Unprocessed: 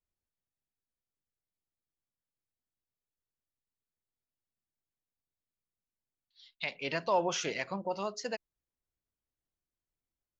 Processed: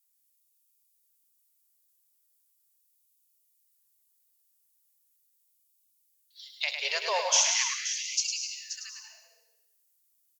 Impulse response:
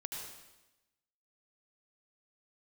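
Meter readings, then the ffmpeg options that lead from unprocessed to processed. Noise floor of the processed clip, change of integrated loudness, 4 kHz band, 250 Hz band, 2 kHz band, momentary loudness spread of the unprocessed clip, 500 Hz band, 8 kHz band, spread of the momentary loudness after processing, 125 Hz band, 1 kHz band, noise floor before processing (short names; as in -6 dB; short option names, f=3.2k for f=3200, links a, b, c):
-72 dBFS, +7.0 dB, +12.5 dB, under -25 dB, +6.0 dB, 9 LU, -3.0 dB, n/a, 16 LU, under -40 dB, 0.0 dB, under -85 dBFS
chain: -filter_complex "[0:a]aemphasis=mode=production:type=cd,aecho=1:1:528:0.316,crystalizer=i=5:c=0,asplit=2[a][b];[1:a]atrim=start_sample=2205,adelay=104[c];[b][c]afir=irnorm=-1:irlink=0,volume=-2dB[d];[a][d]amix=inputs=2:normalize=0,afftfilt=real='re*gte(b*sr/1024,380*pow(2200/380,0.5+0.5*sin(2*PI*0.39*pts/sr)))':imag='im*gte(b*sr/1024,380*pow(2200/380,0.5+0.5*sin(2*PI*0.39*pts/sr)))':win_size=1024:overlap=0.75,volume=-3dB"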